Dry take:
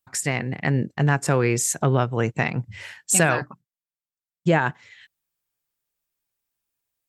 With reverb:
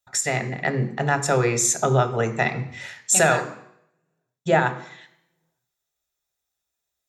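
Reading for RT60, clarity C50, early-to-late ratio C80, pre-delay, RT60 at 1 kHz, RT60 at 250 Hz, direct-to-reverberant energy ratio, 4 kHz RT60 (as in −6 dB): 0.70 s, 12.0 dB, 15.0 dB, 3 ms, 0.70 s, 0.70 s, 7.0 dB, 0.70 s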